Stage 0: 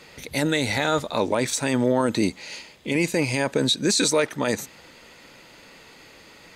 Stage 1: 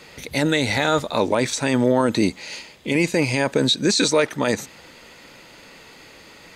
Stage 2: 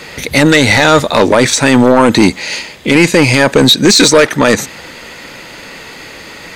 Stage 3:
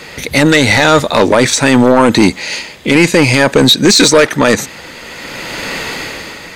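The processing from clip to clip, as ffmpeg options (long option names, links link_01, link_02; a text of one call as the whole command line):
ffmpeg -i in.wav -filter_complex "[0:a]acrossover=split=7400[link_01][link_02];[link_02]acompressor=threshold=-44dB:ratio=4:attack=1:release=60[link_03];[link_01][link_03]amix=inputs=2:normalize=0,volume=3dB" out.wav
ffmpeg -i in.wav -af "equalizer=frequency=1800:width=2.2:gain=3,aeval=exprs='0.562*sin(PI/2*2*val(0)/0.562)':channel_layout=same,volume=4dB" out.wav
ffmpeg -i in.wav -af "dynaudnorm=framelen=220:gausssize=7:maxgain=14dB,volume=-1dB" out.wav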